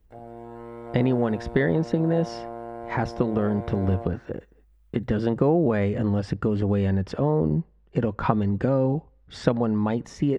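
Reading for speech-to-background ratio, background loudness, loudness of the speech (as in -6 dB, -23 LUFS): 13.0 dB, -38.0 LUFS, -25.0 LUFS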